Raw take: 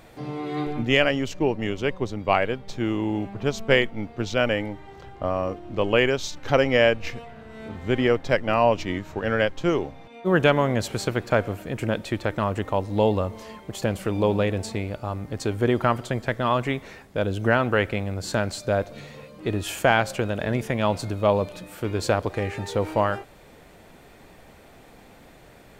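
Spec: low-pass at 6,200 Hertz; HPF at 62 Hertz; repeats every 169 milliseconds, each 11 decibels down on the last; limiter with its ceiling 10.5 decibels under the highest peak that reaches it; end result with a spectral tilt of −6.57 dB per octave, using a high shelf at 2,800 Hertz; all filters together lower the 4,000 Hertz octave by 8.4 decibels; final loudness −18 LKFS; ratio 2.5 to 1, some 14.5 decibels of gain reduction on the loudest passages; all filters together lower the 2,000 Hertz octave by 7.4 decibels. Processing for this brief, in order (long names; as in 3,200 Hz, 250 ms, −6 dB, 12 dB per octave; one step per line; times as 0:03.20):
high-pass filter 62 Hz
low-pass filter 6,200 Hz
parametric band 2,000 Hz −7 dB
high-shelf EQ 2,800 Hz −5 dB
parametric band 4,000 Hz −4 dB
downward compressor 2.5 to 1, threshold −38 dBFS
brickwall limiter −28.5 dBFS
repeating echo 169 ms, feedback 28%, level −11 dB
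level +22.5 dB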